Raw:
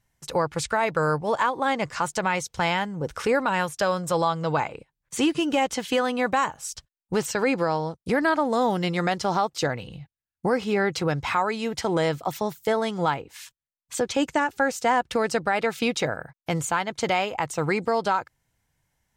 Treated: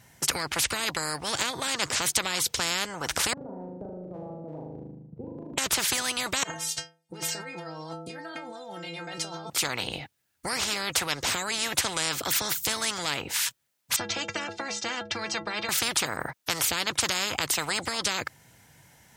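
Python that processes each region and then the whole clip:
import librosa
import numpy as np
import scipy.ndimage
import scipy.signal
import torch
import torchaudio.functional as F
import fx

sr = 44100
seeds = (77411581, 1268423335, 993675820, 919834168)

y = fx.chain(x, sr, fx.ladder_lowpass(hz=260.0, resonance_pct=40),
    fx.transient(attack_db=1, sustain_db=-6),
    fx.room_flutter(wall_m=6.6, rt60_s=0.87), at=(3.33, 5.58))
y = fx.chain(y, sr, fx.lowpass(hz=10000.0, slope=12),
    fx.over_compress(threshold_db=-35.0, ratio=-1.0),
    fx.stiff_resonator(f0_hz=160.0, decay_s=0.44, stiffness=0.008), at=(6.43, 9.5))
y = fx.chain(y, sr, fx.lowpass(hz=5900.0, slope=24),
    fx.peak_eq(hz=480.0, db=10.5, octaves=1.4),
    fx.stiff_resonator(f0_hz=99.0, decay_s=0.31, stiffness=0.03), at=(13.96, 15.69))
y = scipy.signal.sosfilt(scipy.signal.butter(2, 110.0, 'highpass', fs=sr, output='sos'), y)
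y = fx.notch(y, sr, hz=1100.0, q=12.0)
y = fx.spectral_comp(y, sr, ratio=10.0)
y = F.gain(torch.from_numpy(y), 4.5).numpy()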